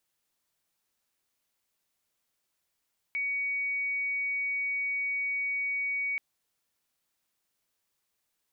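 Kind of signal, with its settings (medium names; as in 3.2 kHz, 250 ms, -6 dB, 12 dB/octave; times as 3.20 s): tone sine 2.25 kHz -28 dBFS 3.03 s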